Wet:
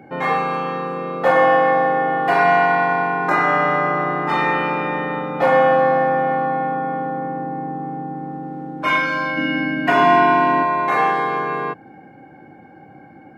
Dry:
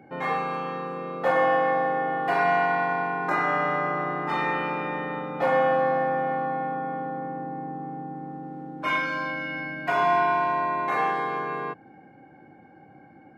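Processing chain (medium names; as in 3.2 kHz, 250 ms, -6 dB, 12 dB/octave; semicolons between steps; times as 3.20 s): 9.37–10.63 s: small resonant body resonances 260/1800/2800 Hz, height 12 dB, ringing for 30 ms; trim +7.5 dB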